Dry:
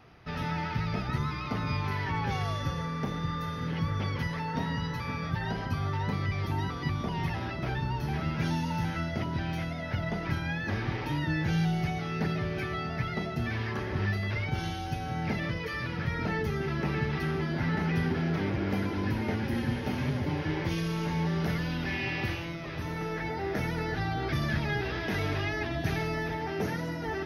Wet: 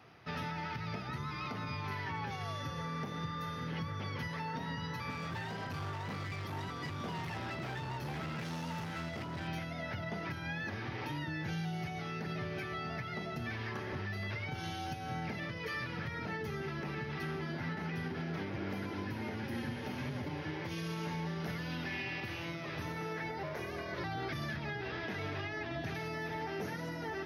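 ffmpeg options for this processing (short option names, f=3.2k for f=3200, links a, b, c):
-filter_complex "[0:a]asettb=1/sr,asplit=3[a][b][c];[a]atrim=end=5.104[d];[b]atrim=start=5.1:end=9.48,asetpts=PTS-STARTPTS,afade=t=in:d=0.004:c=qsin,afade=t=out:st=4.376:d=0.004:c=qsin,asoftclip=type=hard:threshold=-31.5dB[e];[c]atrim=start=9.476[f];[d][e]acrossfade=d=0.004:c1=hsin:c2=qsin[g];[g][f]acrossfade=d=0.004:c1=qsin:c2=hsin,asettb=1/sr,asplit=3[h][i][j];[h]atrim=end=23.434[k];[i]atrim=start=23.43:end=24.04,asetpts=PTS-STARTPTS,afade=t=in:d=0.004:c=qsin,afade=t=out:st=0.606:d=0.004:c=qsin,aeval=exprs='val(0)*sin(2*PI*240*n/s)':c=same[l];[j]atrim=start=24.036[m];[k][l]acrossfade=d=0.004:c1=hsin:c2=qsin[n];[n][m]acrossfade=d=0.004:c1=qsin:c2=hsin,asettb=1/sr,asplit=3[o][p][q];[o]atrim=end=24.564[r];[p]atrim=start=24.56:end=25.95,asetpts=PTS-STARTPTS,afade=t=in:d=0.004:c=qsin,afade=t=out:st=1.386:d=0.004:c=qsin,highshelf=f=7.7k:g=-11.5[s];[q]atrim=start=25.946[t];[r][s]acrossfade=d=0.004:c1=hsin:c2=qsin[u];[u][t]acrossfade=d=0.004:c1=qsin:c2=hsin,highpass=f=80:w=0.5412,highpass=f=80:w=1.3066,lowshelf=f=380:g=-4,alimiter=level_in=5dB:limit=-24dB:level=0:latency=1:release=241,volume=-5dB,volume=-1dB"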